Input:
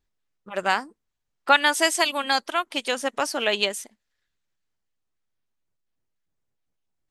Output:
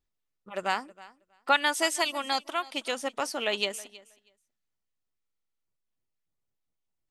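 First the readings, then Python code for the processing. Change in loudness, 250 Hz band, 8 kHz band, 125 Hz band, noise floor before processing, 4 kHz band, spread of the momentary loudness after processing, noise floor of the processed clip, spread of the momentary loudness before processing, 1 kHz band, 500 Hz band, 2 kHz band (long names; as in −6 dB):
−6.0 dB, −5.5 dB, −5.5 dB, can't be measured, −79 dBFS, −5.5 dB, 16 LU, −82 dBFS, 9 LU, −5.5 dB, −5.5 dB, −6.5 dB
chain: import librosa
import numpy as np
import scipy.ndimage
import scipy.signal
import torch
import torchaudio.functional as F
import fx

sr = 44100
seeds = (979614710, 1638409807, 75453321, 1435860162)

p1 = fx.notch(x, sr, hz=1600.0, q=12.0)
p2 = p1 + fx.echo_feedback(p1, sr, ms=320, feedback_pct=15, wet_db=-20.5, dry=0)
p3 = fx.buffer_glitch(p2, sr, at_s=(5.18,), block=2048, repeats=9)
y = F.gain(torch.from_numpy(p3), -5.5).numpy()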